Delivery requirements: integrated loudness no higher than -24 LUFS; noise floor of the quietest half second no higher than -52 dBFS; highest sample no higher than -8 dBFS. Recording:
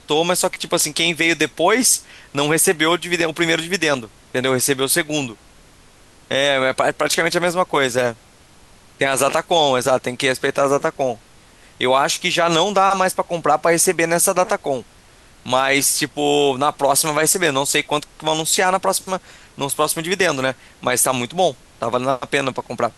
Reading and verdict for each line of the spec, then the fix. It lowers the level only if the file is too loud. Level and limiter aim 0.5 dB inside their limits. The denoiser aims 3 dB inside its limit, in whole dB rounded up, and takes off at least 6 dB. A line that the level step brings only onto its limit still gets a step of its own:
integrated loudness -18.0 LUFS: fail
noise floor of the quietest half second -48 dBFS: fail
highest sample -4.0 dBFS: fail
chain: gain -6.5 dB

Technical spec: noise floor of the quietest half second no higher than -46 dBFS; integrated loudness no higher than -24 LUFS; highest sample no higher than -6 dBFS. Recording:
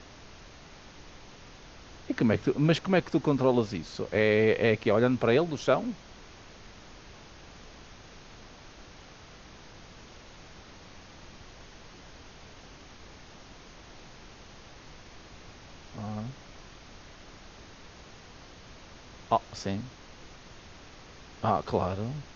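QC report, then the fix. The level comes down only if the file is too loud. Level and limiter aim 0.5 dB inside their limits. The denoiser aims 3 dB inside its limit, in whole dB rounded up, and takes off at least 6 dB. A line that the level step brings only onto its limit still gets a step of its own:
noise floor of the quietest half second -50 dBFS: OK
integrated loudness -27.5 LUFS: OK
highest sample -9.5 dBFS: OK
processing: none

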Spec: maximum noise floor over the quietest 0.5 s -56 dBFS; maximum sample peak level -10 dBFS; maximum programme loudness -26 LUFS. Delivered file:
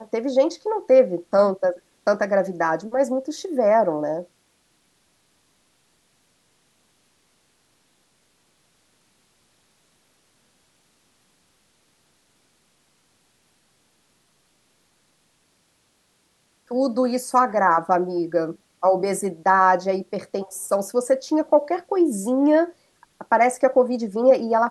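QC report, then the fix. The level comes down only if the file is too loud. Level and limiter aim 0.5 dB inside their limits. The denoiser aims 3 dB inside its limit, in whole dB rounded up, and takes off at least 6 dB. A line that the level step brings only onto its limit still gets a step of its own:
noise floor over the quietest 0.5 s -65 dBFS: OK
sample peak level -5.0 dBFS: fail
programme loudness -21.0 LUFS: fail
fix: gain -5.5 dB

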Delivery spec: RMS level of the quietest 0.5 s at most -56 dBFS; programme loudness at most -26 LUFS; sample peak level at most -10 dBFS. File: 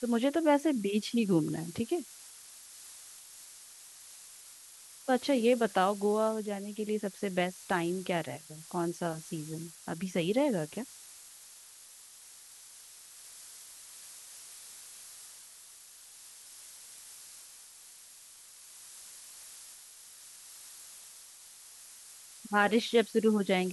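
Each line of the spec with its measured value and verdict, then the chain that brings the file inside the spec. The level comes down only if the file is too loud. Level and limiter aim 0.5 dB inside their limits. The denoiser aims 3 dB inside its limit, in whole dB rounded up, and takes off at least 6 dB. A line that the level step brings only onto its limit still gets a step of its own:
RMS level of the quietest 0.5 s -54 dBFS: fail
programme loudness -31.0 LUFS: OK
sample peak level -12.0 dBFS: OK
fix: denoiser 6 dB, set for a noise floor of -54 dBFS

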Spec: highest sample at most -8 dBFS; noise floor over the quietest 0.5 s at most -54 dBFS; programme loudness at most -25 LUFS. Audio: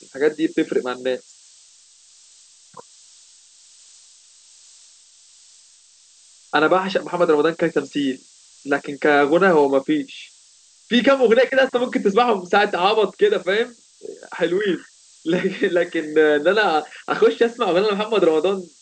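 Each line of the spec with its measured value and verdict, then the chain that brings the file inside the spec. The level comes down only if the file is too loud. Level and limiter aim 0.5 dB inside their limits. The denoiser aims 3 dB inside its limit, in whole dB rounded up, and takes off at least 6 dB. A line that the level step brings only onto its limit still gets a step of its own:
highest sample -5.0 dBFS: fail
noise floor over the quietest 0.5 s -52 dBFS: fail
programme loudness -19.0 LUFS: fail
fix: gain -6.5 dB

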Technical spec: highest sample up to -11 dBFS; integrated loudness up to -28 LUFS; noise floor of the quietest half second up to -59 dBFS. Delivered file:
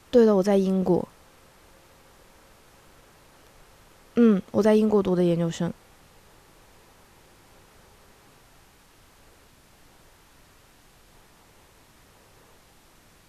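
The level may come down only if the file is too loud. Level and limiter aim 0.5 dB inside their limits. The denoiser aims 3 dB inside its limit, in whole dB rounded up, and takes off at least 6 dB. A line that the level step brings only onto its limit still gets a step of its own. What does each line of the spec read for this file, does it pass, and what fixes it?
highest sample -6.5 dBFS: fail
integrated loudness -22.0 LUFS: fail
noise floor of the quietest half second -56 dBFS: fail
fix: gain -6.5 dB

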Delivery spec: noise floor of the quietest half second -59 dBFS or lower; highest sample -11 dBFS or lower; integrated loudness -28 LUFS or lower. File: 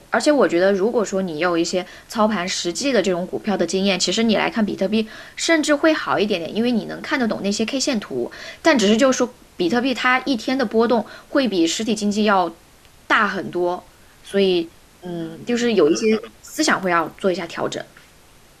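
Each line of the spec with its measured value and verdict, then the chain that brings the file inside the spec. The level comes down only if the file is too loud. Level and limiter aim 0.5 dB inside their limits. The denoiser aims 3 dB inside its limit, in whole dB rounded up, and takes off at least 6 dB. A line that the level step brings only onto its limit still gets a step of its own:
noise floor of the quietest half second -49 dBFS: fail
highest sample -3.0 dBFS: fail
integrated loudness -19.5 LUFS: fail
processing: denoiser 6 dB, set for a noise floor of -49 dBFS; gain -9 dB

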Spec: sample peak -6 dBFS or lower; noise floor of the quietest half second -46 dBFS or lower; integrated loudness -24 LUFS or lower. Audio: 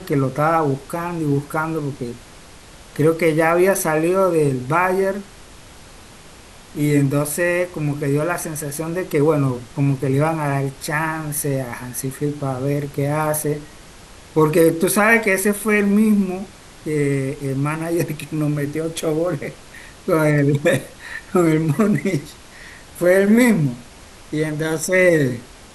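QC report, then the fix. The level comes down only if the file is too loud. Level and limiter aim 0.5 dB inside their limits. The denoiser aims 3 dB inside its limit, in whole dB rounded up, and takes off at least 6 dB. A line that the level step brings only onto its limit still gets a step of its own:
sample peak -2.0 dBFS: fail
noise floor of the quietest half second -42 dBFS: fail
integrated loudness -19.0 LUFS: fail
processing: gain -5.5 dB

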